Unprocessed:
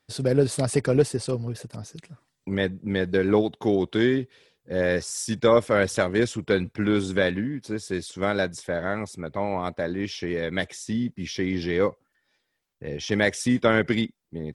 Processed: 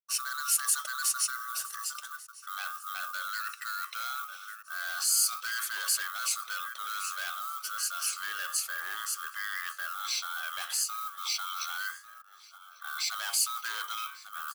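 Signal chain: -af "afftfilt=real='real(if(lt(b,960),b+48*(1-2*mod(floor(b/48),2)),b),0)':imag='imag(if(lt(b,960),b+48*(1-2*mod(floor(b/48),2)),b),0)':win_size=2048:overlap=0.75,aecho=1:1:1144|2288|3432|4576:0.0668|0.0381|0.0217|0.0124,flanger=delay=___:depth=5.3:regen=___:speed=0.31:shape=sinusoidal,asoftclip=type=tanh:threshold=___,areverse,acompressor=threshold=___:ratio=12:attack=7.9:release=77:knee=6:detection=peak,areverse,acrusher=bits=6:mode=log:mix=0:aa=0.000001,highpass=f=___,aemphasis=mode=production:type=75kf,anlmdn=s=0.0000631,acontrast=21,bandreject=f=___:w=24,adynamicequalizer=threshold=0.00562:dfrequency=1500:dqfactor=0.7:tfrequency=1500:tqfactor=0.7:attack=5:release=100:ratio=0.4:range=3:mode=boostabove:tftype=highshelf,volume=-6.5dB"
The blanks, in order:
8.3, -81, -22dB, -37dB, 810, 2.4k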